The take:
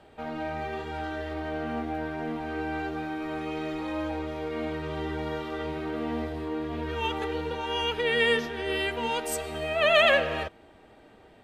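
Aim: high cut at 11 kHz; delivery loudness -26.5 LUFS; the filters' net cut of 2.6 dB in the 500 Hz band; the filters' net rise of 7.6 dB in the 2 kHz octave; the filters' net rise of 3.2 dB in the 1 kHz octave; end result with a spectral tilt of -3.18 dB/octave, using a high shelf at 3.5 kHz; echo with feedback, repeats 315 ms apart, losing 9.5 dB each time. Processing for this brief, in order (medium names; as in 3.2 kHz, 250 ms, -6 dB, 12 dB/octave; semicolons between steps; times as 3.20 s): low-pass 11 kHz; peaking EQ 500 Hz -5 dB; peaking EQ 1 kHz +3.5 dB; peaking EQ 2 kHz +7.5 dB; treble shelf 3.5 kHz +3.5 dB; feedback delay 315 ms, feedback 33%, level -9.5 dB; trim -2 dB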